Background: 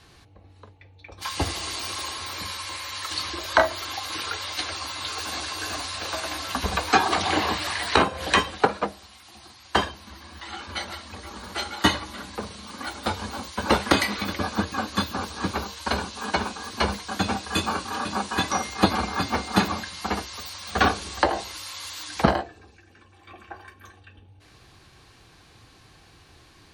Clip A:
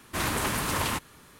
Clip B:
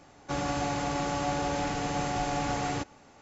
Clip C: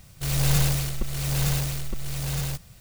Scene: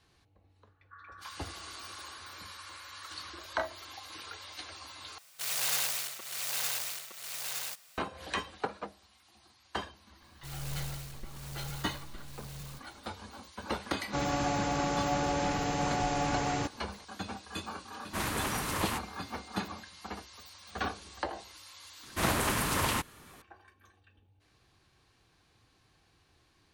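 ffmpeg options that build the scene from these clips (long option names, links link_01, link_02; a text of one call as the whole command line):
ffmpeg -i bed.wav -i cue0.wav -i cue1.wav -i cue2.wav -filter_complex "[2:a]asplit=2[link_01][link_02];[3:a]asplit=2[link_03][link_04];[1:a]asplit=2[link_05][link_06];[0:a]volume=-14.5dB[link_07];[link_01]asuperpass=centerf=1400:order=12:qfactor=1.9[link_08];[link_03]highpass=900[link_09];[link_07]asplit=2[link_10][link_11];[link_10]atrim=end=5.184[link_12];[link_09]atrim=end=2.8,asetpts=PTS-STARTPTS,volume=-2.5dB[link_13];[link_11]atrim=start=7.976[link_14];[link_08]atrim=end=3.21,asetpts=PTS-STARTPTS,volume=-11dB,afade=type=in:duration=0.004:curve=hsin,afade=type=out:start_time=3.206:duration=0.004:curve=hsin,adelay=620[link_15];[link_04]atrim=end=2.8,asetpts=PTS-STARTPTS,volume=-16.5dB,afade=type=in:duration=0.004:curve=hsin,afade=type=out:start_time=2.796:duration=0.004:curve=hsin,adelay=10220[link_16];[link_02]atrim=end=3.21,asetpts=PTS-STARTPTS,volume=-0.5dB,afade=type=in:duration=0.004:curve=hsin,afade=type=out:start_time=3.206:duration=0.004:curve=hsin,adelay=13840[link_17];[link_05]atrim=end=1.39,asetpts=PTS-STARTPTS,volume=-5.5dB,afade=type=in:duration=0.004:curve=hsin,afade=type=out:start_time=1.386:duration=0.004:curve=hsin,adelay=18000[link_18];[link_06]atrim=end=1.39,asetpts=PTS-STARTPTS,volume=-1.5dB,afade=type=in:duration=0.004:curve=hsin,afade=type=out:start_time=1.386:duration=0.004:curve=hsin,adelay=22030[link_19];[link_12][link_13]acrossfade=duration=0.004:curve1=hsin:curve2=hsin[link_20];[link_20][link_14]acrossfade=duration=0.004:curve1=hsin:curve2=hsin[link_21];[link_21][link_15][link_16][link_17][link_18][link_19]amix=inputs=6:normalize=0" out.wav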